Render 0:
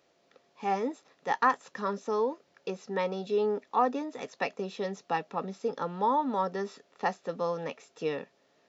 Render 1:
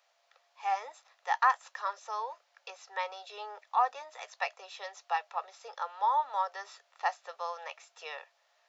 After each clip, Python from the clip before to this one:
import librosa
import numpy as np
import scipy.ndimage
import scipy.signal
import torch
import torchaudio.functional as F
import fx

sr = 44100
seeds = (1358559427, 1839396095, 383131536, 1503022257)

y = scipy.signal.sosfilt(scipy.signal.butter(6, 660.0, 'highpass', fs=sr, output='sos'), x)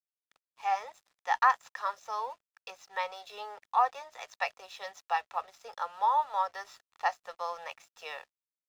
y = np.sign(x) * np.maximum(np.abs(x) - 10.0 ** (-59.5 / 20.0), 0.0)
y = F.gain(torch.from_numpy(y), 1.5).numpy()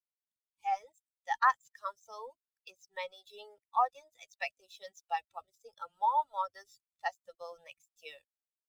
y = fx.bin_expand(x, sr, power=2.0)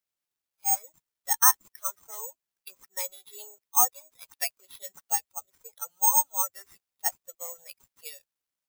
y = (np.kron(x[::6], np.eye(6)[0]) * 6)[:len(x)]
y = F.gain(torch.from_numpy(y), -1.0).numpy()